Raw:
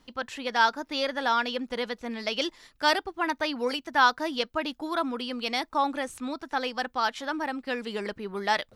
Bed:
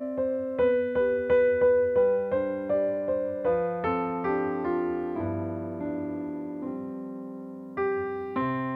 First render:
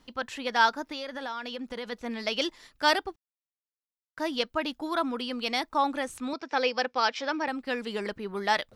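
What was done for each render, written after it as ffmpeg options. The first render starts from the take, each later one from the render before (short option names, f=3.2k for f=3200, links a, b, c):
-filter_complex "[0:a]asplit=3[a][b][c];[a]afade=t=out:st=0.84:d=0.02[d];[b]acompressor=threshold=-32dB:ratio=6:attack=3.2:release=140:knee=1:detection=peak,afade=t=in:st=0.84:d=0.02,afade=t=out:st=1.91:d=0.02[e];[c]afade=t=in:st=1.91:d=0.02[f];[d][e][f]amix=inputs=3:normalize=0,asettb=1/sr,asplit=3[g][h][i];[g]atrim=end=6.334[j];[h]atrim=start=6.33:end=7.48,asetpts=PTS-STARTPTS,afade=t=in:d=0.004:c=qsin,afade=t=out:st=1.146:d=0.004:c=qsin,highpass=180,equalizer=f=500:t=q:w=4:g=7,equalizer=f=2.4k:t=q:w=4:g=8,equalizer=f=5.2k:t=q:w=4:g=8,lowpass=f=6.3k:w=0.5412,lowpass=f=6.3k:w=1.3066[k];[i]atrim=start=7.476[l];[j][k]acrossfade=d=0.004:c1=hsin:c2=qsin[m];[m][l]acrossfade=d=0.004:c1=qsin:c2=hsin,asplit=3[n][o][p];[n]atrim=end=3.16,asetpts=PTS-STARTPTS,afade=t=out:st=3.156:d=0.004:c=hsin[q];[o]atrim=start=3.16:end=4.17,asetpts=PTS-STARTPTS,volume=0[r];[p]atrim=start=4.17,asetpts=PTS-STARTPTS,afade=t=in:d=0.004:c=hsin[s];[q][r][s]concat=n=3:v=0:a=1"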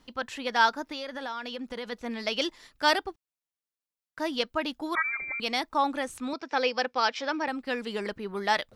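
-filter_complex "[0:a]asettb=1/sr,asplit=3[a][b][c];[a]atrim=end=4.954[d];[b]atrim=start=4.95:end=5.4,asetpts=PTS-STARTPTS,afade=t=in:d=0.004:c=qsin,afade=t=out:st=0.446:d=0.004:c=qsin,lowpass=f=2.2k:t=q:w=0.5098,lowpass=f=2.2k:t=q:w=0.6013,lowpass=f=2.2k:t=q:w=0.9,lowpass=f=2.2k:t=q:w=2.563,afreqshift=-2600[e];[c]atrim=start=5.396[f];[d][e]acrossfade=d=0.004:c1=hsin:c2=qsin[g];[g][f]acrossfade=d=0.004:c1=qsin:c2=hsin"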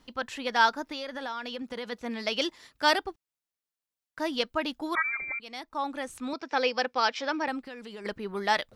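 -filter_complex "[0:a]asettb=1/sr,asplit=3[a][b][c];[a]atrim=end=1.624[d];[b]atrim=start=1.62:end=2.94,asetpts=PTS-STARTPTS,afade=t=in:d=0.004:c=qsin,afade=t=out:st=1.316:d=0.004:c=qsin,highpass=52[e];[c]atrim=start=2.936[f];[d][e]acrossfade=d=0.004:c1=hsin:c2=qsin[g];[g][f]acrossfade=d=0.004:c1=qsin:c2=hsin,asplit=3[h][i][j];[h]afade=t=out:st=7.59:d=0.02[k];[i]acompressor=threshold=-40dB:ratio=4:attack=3.2:release=140:knee=1:detection=peak,afade=t=in:st=7.59:d=0.02,afade=t=out:st=8.04:d=0.02[l];[j]afade=t=in:st=8.04:d=0.02[m];[k][l][m]amix=inputs=3:normalize=0,asplit=2[n][o];[n]atrim=end=5.39,asetpts=PTS-STARTPTS,afade=t=out:st=5.386:d=0.004:c=hsin:silence=0.133352[p];[o]atrim=start=5.39,asetpts=PTS-STARTPTS,afade=t=in:d=1.02:silence=0.133352[q];[p][q]concat=n=2:v=0:a=1"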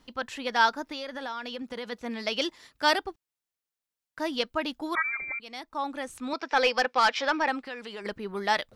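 -filter_complex "[0:a]asplit=3[a][b][c];[a]afade=t=out:st=6.3:d=0.02[d];[b]asplit=2[e][f];[f]highpass=f=720:p=1,volume=12dB,asoftclip=type=tanh:threshold=-11dB[g];[e][g]amix=inputs=2:normalize=0,lowpass=f=4.2k:p=1,volume=-6dB,afade=t=in:st=6.3:d=0.02,afade=t=out:st=8.01:d=0.02[h];[c]afade=t=in:st=8.01:d=0.02[i];[d][h][i]amix=inputs=3:normalize=0"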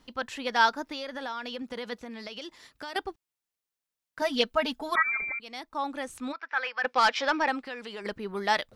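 -filter_complex "[0:a]asettb=1/sr,asplit=3[a][b][c];[a]atrim=end=1.964[d];[b]atrim=start=1.96:end=2.96,asetpts=PTS-STARTPTS,afade=t=in:d=0.004:c=qsin,afade=t=out:st=0.996:d=0.004:c=qsin,acompressor=threshold=-36dB:ratio=8:attack=3.2:release=140:knee=1:detection=peak[e];[c]atrim=start=2.956[f];[d][e]acrossfade=d=0.004:c1=hsin:c2=qsin[g];[g][f]acrossfade=d=0.004:c1=qsin:c2=hsin,asettb=1/sr,asplit=3[h][i][j];[h]atrim=end=4.214[k];[i]atrim=start=4.21:end=5.3,asetpts=PTS-STARTPTS,afade=t=in:d=0.004:c=qsin,afade=t=out:st=1.086:d=0.004:c=qsin,aecho=1:1:4.6:0.98,atrim=end_sample=48069[l];[j]atrim=start=5.296[m];[k][l]acrossfade=d=0.004:c1=hsin:c2=qsin[n];[n][m]acrossfade=d=0.004:c1=qsin:c2=hsin,asplit=3[o][p][q];[o]afade=t=out:st=6.31:d=0.02[r];[p]bandpass=f=1.6k:t=q:w=2.3,afade=t=in:st=6.31:d=0.02,afade=t=out:st=6.83:d=0.02[s];[q]afade=t=in:st=6.83:d=0.02[t];[r][s][t]amix=inputs=3:normalize=0"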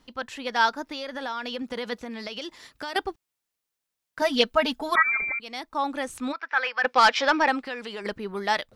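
-af "dynaudnorm=f=310:g=7:m=5dB"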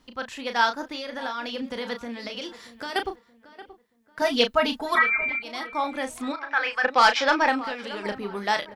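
-filter_complex "[0:a]asplit=2[a][b];[b]adelay=34,volume=-8dB[c];[a][c]amix=inputs=2:normalize=0,asplit=2[d][e];[e]adelay=628,lowpass=f=2.2k:p=1,volume=-16dB,asplit=2[f][g];[g]adelay=628,lowpass=f=2.2k:p=1,volume=0.38,asplit=2[h][i];[i]adelay=628,lowpass=f=2.2k:p=1,volume=0.38[j];[d][f][h][j]amix=inputs=4:normalize=0"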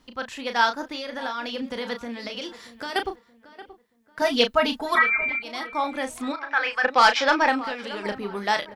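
-af "volume=1dB"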